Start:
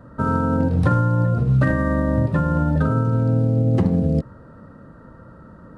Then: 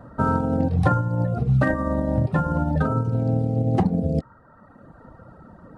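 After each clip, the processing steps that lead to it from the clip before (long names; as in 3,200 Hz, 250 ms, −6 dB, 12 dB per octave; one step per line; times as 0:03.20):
reverb reduction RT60 1.2 s
parametric band 760 Hz +11.5 dB 0.34 octaves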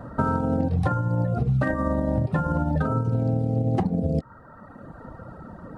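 downward compressor, threshold −25 dBFS, peak gain reduction 11.5 dB
level +5 dB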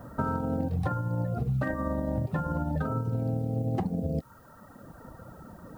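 background noise blue −60 dBFS
level −6 dB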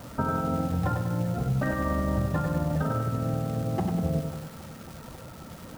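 surface crackle 430 per second −39 dBFS
bucket-brigade delay 272 ms, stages 4,096, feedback 77%, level −17 dB
feedback echo at a low word length 97 ms, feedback 55%, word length 8 bits, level −5 dB
level +1.5 dB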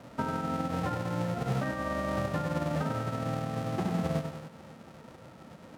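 spectral envelope flattened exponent 0.3
resonant band-pass 270 Hz, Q 0.53
level +1.5 dB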